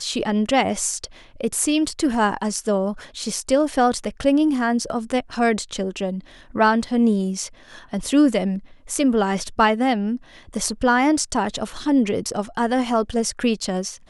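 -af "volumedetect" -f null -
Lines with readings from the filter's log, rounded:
mean_volume: -21.4 dB
max_volume: -4.6 dB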